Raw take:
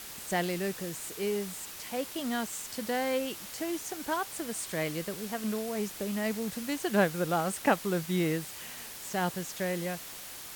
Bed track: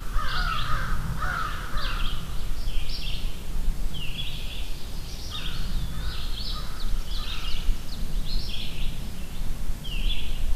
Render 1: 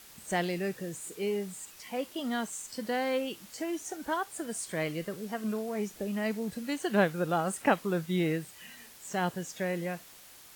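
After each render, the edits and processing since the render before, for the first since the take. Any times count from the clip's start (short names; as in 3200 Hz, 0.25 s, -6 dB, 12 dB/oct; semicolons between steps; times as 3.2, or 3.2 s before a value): noise print and reduce 9 dB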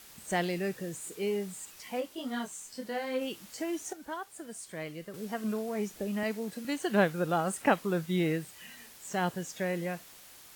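1.99–3.2 detuned doubles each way 31 cents -> 17 cents; 3.93–5.14 gain -7 dB; 6.23–6.65 HPF 220 Hz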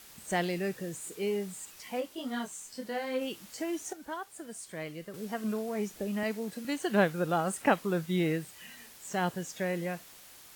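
nothing audible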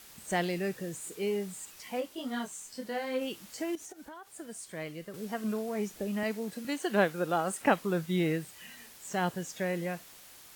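3.75–4.28 compressor 12:1, threshold -42 dBFS; 6.67–7.61 HPF 200 Hz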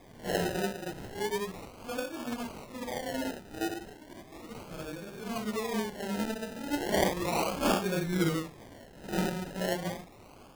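phase scrambler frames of 0.2 s; decimation with a swept rate 31×, swing 60% 0.35 Hz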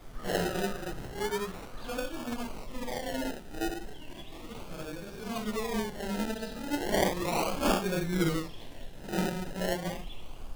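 add bed track -17.5 dB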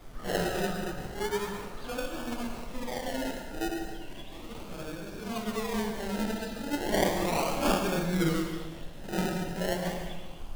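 plate-style reverb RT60 1.2 s, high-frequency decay 0.75×, pre-delay 95 ms, DRR 5 dB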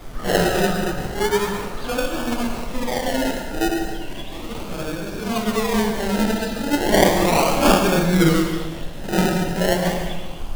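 gain +11.5 dB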